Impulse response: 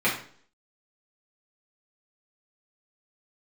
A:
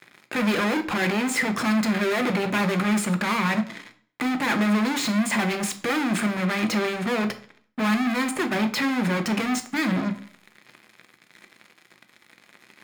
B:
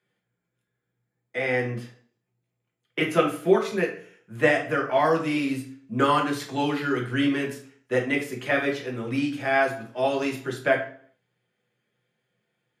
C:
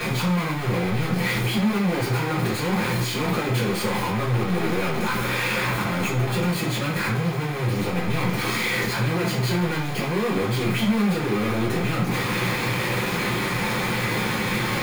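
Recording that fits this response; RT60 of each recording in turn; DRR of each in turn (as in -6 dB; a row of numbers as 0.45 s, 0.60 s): C; 0.50 s, 0.50 s, 0.50 s; 6.5 dB, -0.5 dB, -8.0 dB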